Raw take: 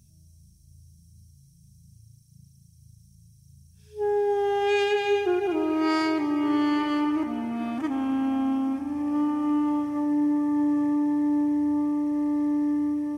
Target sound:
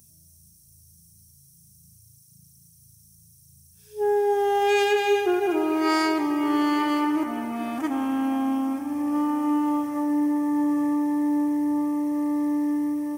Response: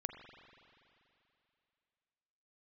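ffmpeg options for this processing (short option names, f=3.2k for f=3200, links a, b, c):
-filter_complex "[0:a]aemphasis=mode=production:type=bsi,asplit=2[a][b];[1:a]atrim=start_sample=2205,lowpass=2.2k[c];[b][c]afir=irnorm=-1:irlink=0,volume=-0.5dB[d];[a][d]amix=inputs=2:normalize=0"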